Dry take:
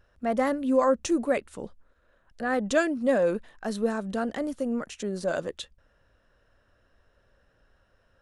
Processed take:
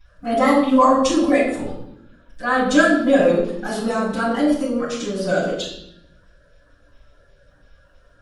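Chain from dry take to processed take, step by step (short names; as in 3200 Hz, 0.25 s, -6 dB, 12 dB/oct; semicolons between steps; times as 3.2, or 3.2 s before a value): bin magnitudes rounded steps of 30 dB; low shelf 410 Hz -5.5 dB; reverb RT60 0.75 s, pre-delay 4 ms, DRR -9.5 dB; gain -1.5 dB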